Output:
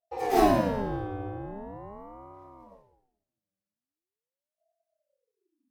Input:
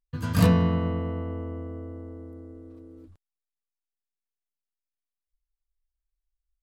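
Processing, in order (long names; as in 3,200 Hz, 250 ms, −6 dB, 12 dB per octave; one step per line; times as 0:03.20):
speed change +16%
coupled-rooms reverb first 0.84 s, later 2.1 s, from −27 dB, DRR −9.5 dB
ring modulator whose carrier an LFO sweeps 430 Hz, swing 55%, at 0.42 Hz
level −8.5 dB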